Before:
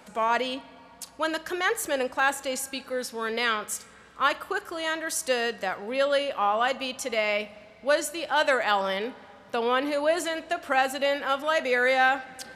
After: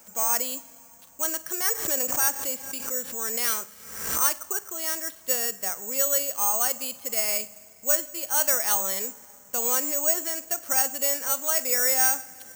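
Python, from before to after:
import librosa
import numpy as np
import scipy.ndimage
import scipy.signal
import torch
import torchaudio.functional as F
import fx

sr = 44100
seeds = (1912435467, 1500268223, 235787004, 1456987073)

y = (np.kron(scipy.signal.resample_poly(x, 1, 6), np.eye(6)[0]) * 6)[:len(x)]
y = fx.pre_swell(y, sr, db_per_s=61.0, at=(1.73, 4.38))
y = y * 10.0 ** (-7.5 / 20.0)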